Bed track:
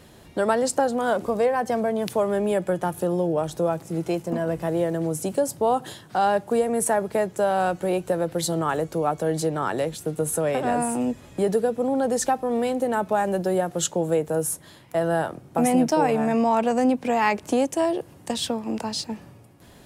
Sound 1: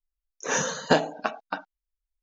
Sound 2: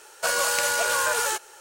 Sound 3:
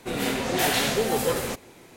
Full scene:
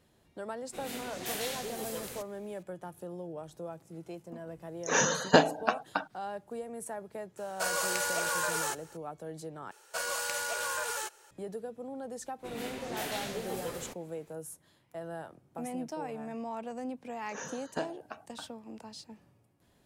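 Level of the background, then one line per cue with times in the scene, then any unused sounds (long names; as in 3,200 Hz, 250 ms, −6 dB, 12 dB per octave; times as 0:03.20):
bed track −18 dB
0:00.67: mix in 3 −17 dB + high-shelf EQ 3,500 Hz +8.5 dB
0:04.43: mix in 1 −0.5 dB
0:07.37: mix in 2 −7.5 dB + parametric band 3,000 Hz −2.5 dB 0.98 octaves
0:09.71: overwrite with 2 −10.5 dB
0:12.38: mix in 3 −14 dB, fades 0.02 s
0:16.86: mix in 1 −16 dB + parametric band 3,700 Hz −4.5 dB 0.62 octaves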